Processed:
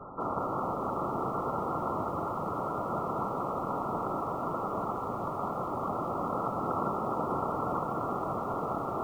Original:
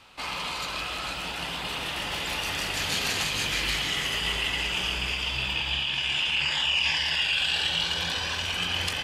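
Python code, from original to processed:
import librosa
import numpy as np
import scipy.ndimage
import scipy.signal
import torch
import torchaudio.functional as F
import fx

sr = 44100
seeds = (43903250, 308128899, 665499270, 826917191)

p1 = fx.low_shelf(x, sr, hz=140.0, db=10.0)
p2 = fx.over_compress(p1, sr, threshold_db=-35.0, ratio=-0.5)
p3 = p1 + (p2 * librosa.db_to_amplitude(2.5))
p4 = fx.noise_vocoder(p3, sr, seeds[0], bands=1)
p5 = fx.quant_dither(p4, sr, seeds[1], bits=6, dither='triangular')
p6 = fx.brickwall_lowpass(p5, sr, high_hz=1400.0)
p7 = p6 + fx.echo_feedback(p6, sr, ms=501, feedback_pct=18, wet_db=-10.5, dry=0)
y = fx.echo_crushed(p7, sr, ms=201, feedback_pct=80, bits=9, wet_db=-11.0)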